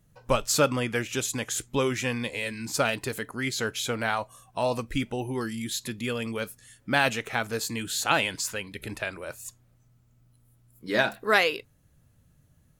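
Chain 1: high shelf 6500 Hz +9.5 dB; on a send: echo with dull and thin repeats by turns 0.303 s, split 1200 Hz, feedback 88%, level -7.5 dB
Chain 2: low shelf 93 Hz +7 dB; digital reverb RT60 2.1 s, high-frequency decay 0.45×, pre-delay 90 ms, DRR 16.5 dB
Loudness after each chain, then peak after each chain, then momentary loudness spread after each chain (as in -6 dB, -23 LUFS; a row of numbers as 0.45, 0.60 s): -26.0, -27.5 LUFS; -5.5, -7.5 dBFS; 11, 13 LU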